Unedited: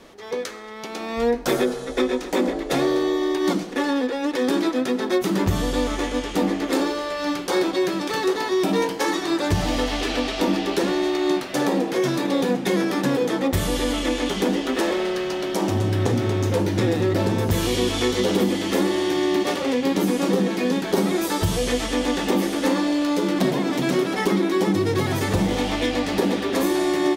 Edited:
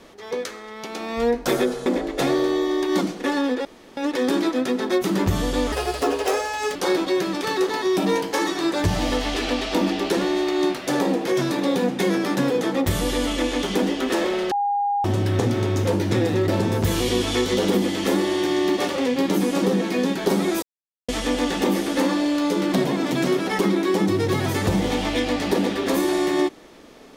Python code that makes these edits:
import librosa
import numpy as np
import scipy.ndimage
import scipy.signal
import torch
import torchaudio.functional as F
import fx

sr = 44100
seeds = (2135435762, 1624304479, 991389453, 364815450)

y = fx.edit(x, sr, fx.cut(start_s=1.86, length_s=0.52),
    fx.insert_room_tone(at_s=4.17, length_s=0.32),
    fx.speed_span(start_s=5.92, length_s=1.5, speed=1.45),
    fx.bleep(start_s=15.18, length_s=0.53, hz=812.0, db=-19.0),
    fx.silence(start_s=21.29, length_s=0.46), tone=tone)